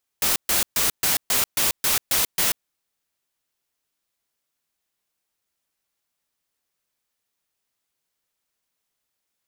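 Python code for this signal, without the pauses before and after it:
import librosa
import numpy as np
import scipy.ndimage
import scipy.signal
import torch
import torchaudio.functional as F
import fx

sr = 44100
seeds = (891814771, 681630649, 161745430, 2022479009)

y = fx.noise_burst(sr, seeds[0], colour='white', on_s=0.14, off_s=0.13, bursts=9, level_db=-20.5)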